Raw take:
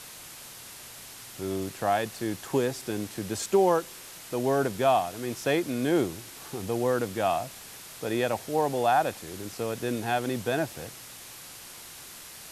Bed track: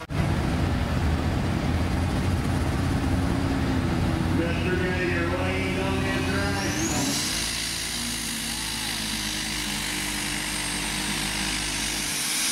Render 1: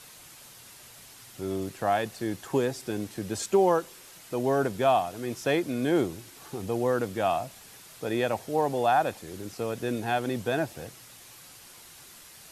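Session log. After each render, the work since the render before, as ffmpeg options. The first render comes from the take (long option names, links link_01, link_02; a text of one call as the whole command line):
ffmpeg -i in.wav -af "afftdn=noise_reduction=6:noise_floor=-45" out.wav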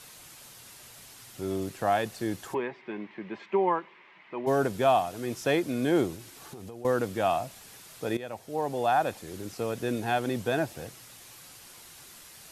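ffmpeg -i in.wav -filter_complex "[0:a]asplit=3[link_01][link_02][link_03];[link_01]afade=type=out:start_time=2.53:duration=0.02[link_04];[link_02]highpass=frequency=200:width=0.5412,highpass=frequency=200:width=1.3066,equalizer=frequency=270:width_type=q:width=4:gain=-10,equalizer=frequency=490:width_type=q:width=4:gain=-10,equalizer=frequency=710:width_type=q:width=4:gain=-6,equalizer=frequency=1000:width_type=q:width=4:gain=6,equalizer=frequency=1400:width_type=q:width=4:gain=-6,equalizer=frequency=2100:width_type=q:width=4:gain=7,lowpass=frequency=2600:width=0.5412,lowpass=frequency=2600:width=1.3066,afade=type=in:start_time=2.53:duration=0.02,afade=type=out:start_time=4.46:duration=0.02[link_05];[link_03]afade=type=in:start_time=4.46:duration=0.02[link_06];[link_04][link_05][link_06]amix=inputs=3:normalize=0,asettb=1/sr,asplit=3[link_07][link_08][link_09];[link_07]atrim=end=6.154[link_10];[link_08]atrim=start=6.15:end=6.85,asetpts=PTS-STARTPTS,afade=type=in:duration=0.004:curve=qsin,afade=type=out:start_time=0.696:duration=0.004:curve=qsin,acompressor=threshold=-38dB:ratio=12:attack=3.2:release=140:knee=1:detection=peak[link_11];[link_09]atrim=start=6.846[link_12];[link_10][link_11]acrossfade=duration=0.004:curve1=hsin:curve2=qsin[link_13];[link_13][link_12]acrossfade=duration=0.004:curve1=qsin:curve2=hsin,asplit=2[link_14][link_15];[link_14]atrim=end=8.17,asetpts=PTS-STARTPTS,afade=type=out:start_time=8.166:duration=0.004:curve=hsin:silence=0.177828[link_16];[link_15]atrim=start=8.17,asetpts=PTS-STARTPTS,afade=type=in:duration=1.3:curve=qsin:silence=0.177828[link_17];[link_16][link_17]concat=n=2:v=0:a=1" out.wav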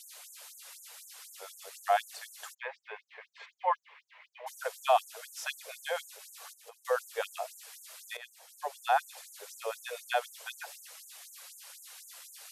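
ffmpeg -i in.wav -af "afftfilt=real='re*gte(b*sr/1024,400*pow(6600/400,0.5+0.5*sin(2*PI*4*pts/sr)))':imag='im*gte(b*sr/1024,400*pow(6600/400,0.5+0.5*sin(2*PI*4*pts/sr)))':win_size=1024:overlap=0.75" out.wav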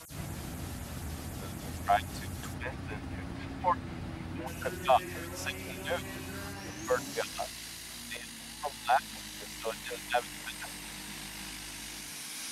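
ffmpeg -i in.wav -i bed.wav -filter_complex "[1:a]volume=-16dB[link_01];[0:a][link_01]amix=inputs=2:normalize=0" out.wav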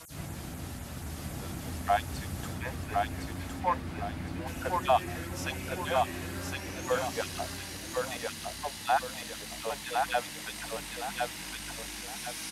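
ffmpeg -i in.wav -af "aecho=1:1:1061|2122|3183|4244|5305:0.708|0.248|0.0867|0.0304|0.0106" out.wav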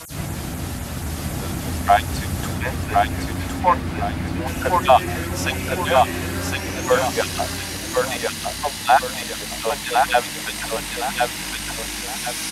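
ffmpeg -i in.wav -af "volume=12dB,alimiter=limit=-3dB:level=0:latency=1" out.wav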